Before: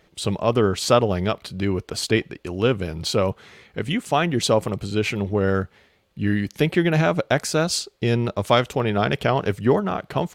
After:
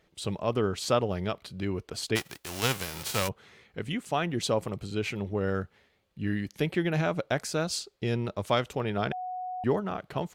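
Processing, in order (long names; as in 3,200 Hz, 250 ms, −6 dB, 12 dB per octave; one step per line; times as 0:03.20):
0:02.15–0:03.27: spectral envelope flattened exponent 0.3
0:09.12–0:09.64: beep over 735 Hz −24 dBFS
level −8.5 dB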